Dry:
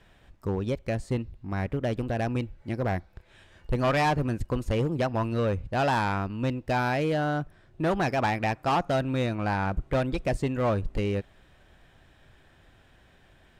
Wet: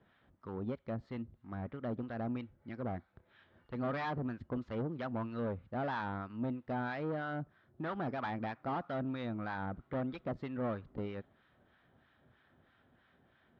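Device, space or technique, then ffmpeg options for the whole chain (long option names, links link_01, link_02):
guitar amplifier with harmonic tremolo: -filter_complex "[0:a]acrossover=split=890[link_01][link_02];[link_01]aeval=exprs='val(0)*(1-0.7/2+0.7/2*cos(2*PI*3.1*n/s))':channel_layout=same[link_03];[link_02]aeval=exprs='val(0)*(1-0.7/2-0.7/2*cos(2*PI*3.1*n/s))':channel_layout=same[link_04];[link_03][link_04]amix=inputs=2:normalize=0,asoftclip=type=tanh:threshold=-26.5dB,highpass=99,equalizer=frequency=240:width_type=q:width=4:gain=6,equalizer=frequency=1300:width_type=q:width=4:gain=5,equalizer=frequency=2600:width_type=q:width=4:gain=-7,lowpass=frequency=3600:width=0.5412,lowpass=frequency=3600:width=1.3066,volume=-6dB"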